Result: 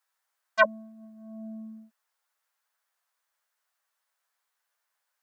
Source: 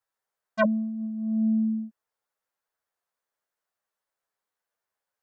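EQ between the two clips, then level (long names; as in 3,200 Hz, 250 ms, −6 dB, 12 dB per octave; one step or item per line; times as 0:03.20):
high-pass filter 900 Hz 12 dB per octave
+7.5 dB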